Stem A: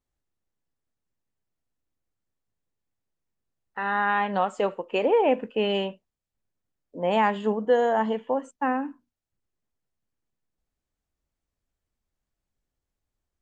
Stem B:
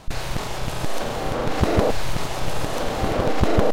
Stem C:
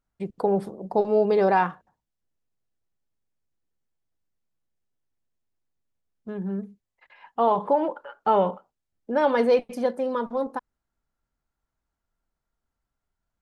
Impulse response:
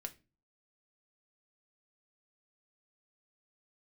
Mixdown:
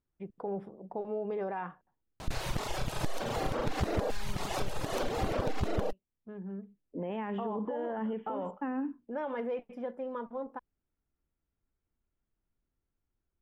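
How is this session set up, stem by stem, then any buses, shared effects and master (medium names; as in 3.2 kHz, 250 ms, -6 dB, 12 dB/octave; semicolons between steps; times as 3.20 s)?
-6.5 dB, 0.00 s, bus A, no send, peak limiter -19.5 dBFS, peak gain reduction 9.5 dB; resonant low shelf 490 Hz +6 dB, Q 1.5
+2.5 dB, 2.20 s, no bus, no send, reverb removal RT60 1 s
-11.0 dB, 0.00 s, bus A, no send, none
bus A: 0.0 dB, Savitzky-Golay filter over 25 samples; peak limiter -26.5 dBFS, peak gain reduction 9 dB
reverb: none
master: compression 4:1, threshold -30 dBFS, peak gain reduction 16.5 dB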